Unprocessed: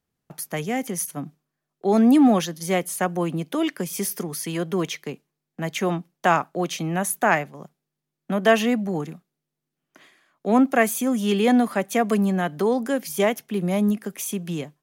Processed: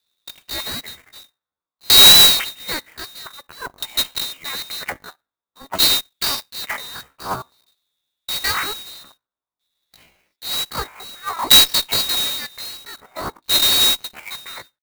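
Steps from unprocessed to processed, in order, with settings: band-swap scrambler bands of 2000 Hz; bell 11000 Hz -2.5 dB 0.99 oct; LFO low-pass saw down 0.52 Hz 570–2500 Hz; dynamic EQ 580 Hz, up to +5 dB, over -37 dBFS, Q 0.72; in parallel at -8 dB: one-sided clip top -24 dBFS; on the sum: pitch shift +9.5 st; clock jitter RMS 0.027 ms; gain -1 dB

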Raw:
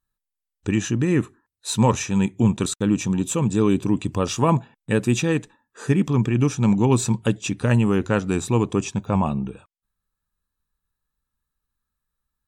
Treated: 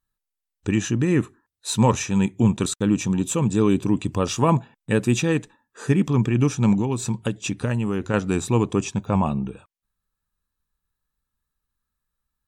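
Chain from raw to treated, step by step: 6.79–8.14 compressor 6:1, threshold -20 dBFS, peak gain reduction 8 dB

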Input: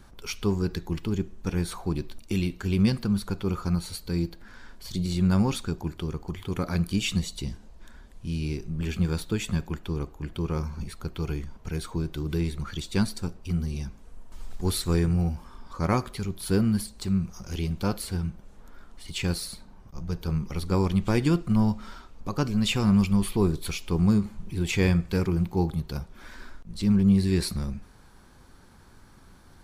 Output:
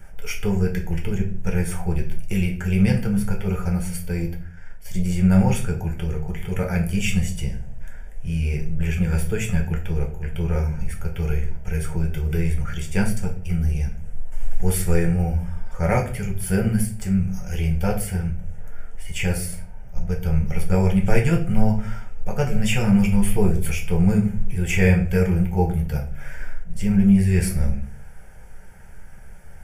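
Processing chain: 4.08–6.33 expander -37 dBFS; fixed phaser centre 1100 Hz, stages 6; shoebox room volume 32 m³, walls mixed, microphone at 0.51 m; gain +6 dB

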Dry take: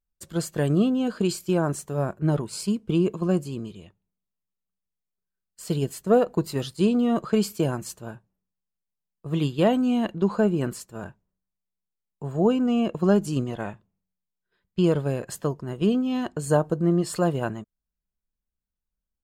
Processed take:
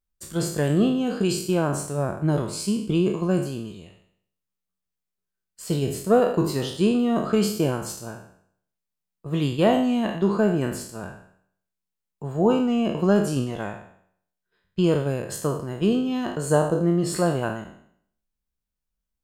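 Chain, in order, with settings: spectral trails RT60 0.63 s

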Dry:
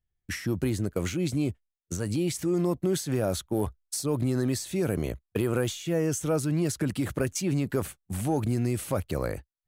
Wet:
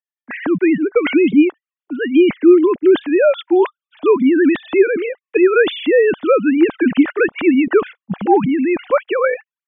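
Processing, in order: sine-wave speech; dynamic EQ 2100 Hz, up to +6 dB, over -49 dBFS, Q 0.88; AGC gain up to 16.5 dB

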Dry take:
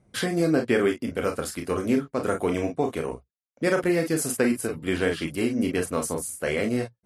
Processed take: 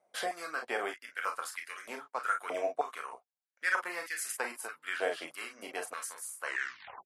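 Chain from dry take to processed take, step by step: tape stop at the end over 0.60 s; stepped high-pass 3.2 Hz 660–1900 Hz; gain -8.5 dB

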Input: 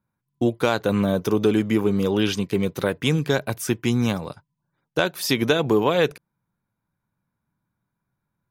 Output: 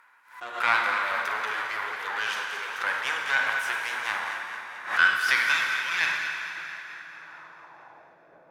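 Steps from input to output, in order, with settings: high-pass sweep 860 Hz -> 2200 Hz, 4.73–5.58; half-wave rectifier; high shelf 7100 Hz +12 dB; plate-style reverb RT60 4.3 s, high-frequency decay 0.55×, DRR 2.5 dB; upward compressor, threshold -39 dBFS; transient shaper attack -3 dB, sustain +5 dB; band-pass sweep 1600 Hz -> 580 Hz, 7.09–8.3; thin delay 0.22 s, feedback 58%, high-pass 1500 Hz, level -9 dB; backwards sustainer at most 130 dB/s; gain +8.5 dB

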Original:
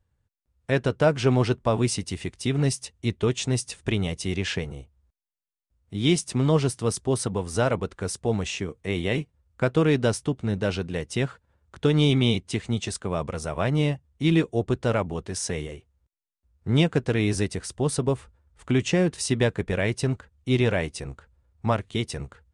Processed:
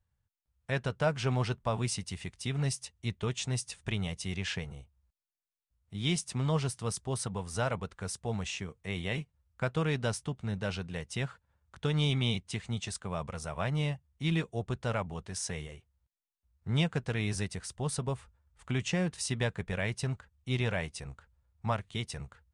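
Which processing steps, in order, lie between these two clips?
EQ curve 190 Hz 0 dB, 300 Hz -9 dB, 830 Hz +1 dB; gain -7 dB

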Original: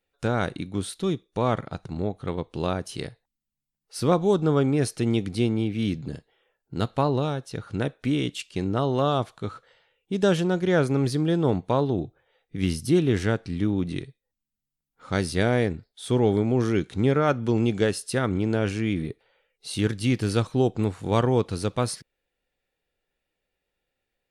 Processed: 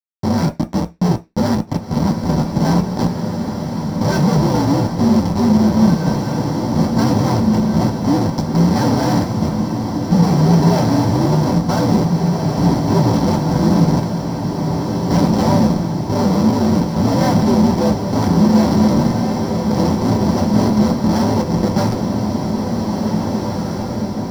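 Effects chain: inharmonic rescaling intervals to 125%; bell 1500 Hz +12.5 dB 0.56 oct; sample gate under -32 dBFS; rotary speaker horn 0.9 Hz; Schmitt trigger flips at -34 dBFS; diffused feedback echo 1.951 s, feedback 58%, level -3.5 dB; reverb RT60 0.20 s, pre-delay 3 ms, DRR 4.5 dB

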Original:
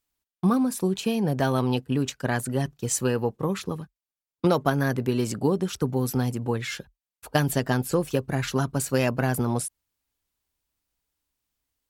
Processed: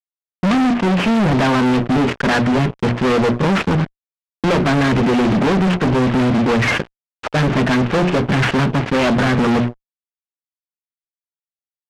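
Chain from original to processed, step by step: CVSD 16 kbps; HPF 120 Hz 6 dB/oct; notches 60/120/180/240/300/360/420 Hz; dynamic EQ 210 Hz, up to +6 dB, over -41 dBFS, Q 2.2; in parallel at -1 dB: limiter -20 dBFS, peak gain reduction 10 dB; on the sum: fuzz box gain 35 dB, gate -43 dBFS; air absorption 63 m

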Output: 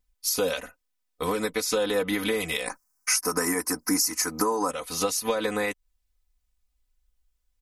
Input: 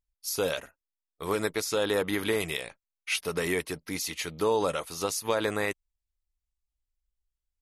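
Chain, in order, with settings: 2.66–4.71 EQ curve 160 Hz 0 dB, 330 Hz +11 dB, 500 Hz 0 dB, 960 Hz +13 dB, 1600 Hz +9 dB, 3500 Hz -17 dB, 5200 Hz +14 dB; compressor 5:1, threshold -33 dBFS, peak gain reduction 17 dB; comb 4 ms, depth 92%; gain +7 dB

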